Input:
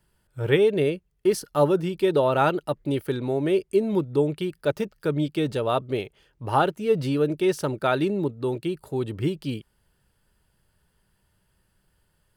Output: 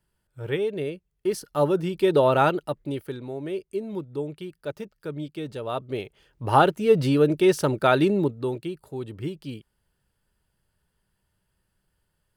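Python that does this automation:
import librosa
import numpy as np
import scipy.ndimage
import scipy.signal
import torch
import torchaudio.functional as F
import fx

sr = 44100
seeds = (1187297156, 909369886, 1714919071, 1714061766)

y = fx.gain(x, sr, db=fx.line((0.88, -7.0), (2.29, 2.5), (3.26, -8.5), (5.5, -8.5), (6.53, 3.5), (8.17, 3.5), (8.8, -6.0)))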